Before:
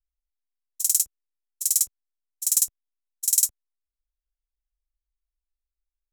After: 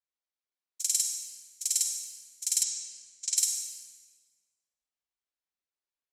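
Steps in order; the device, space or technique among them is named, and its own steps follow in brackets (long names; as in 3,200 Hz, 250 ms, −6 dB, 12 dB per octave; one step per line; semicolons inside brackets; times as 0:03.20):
supermarket ceiling speaker (band-pass filter 260–6,200 Hz; convolution reverb RT60 1.5 s, pre-delay 36 ms, DRR 2.5 dB)
0:02.63–0:03.37: low-pass filter 7,800 Hz 24 dB per octave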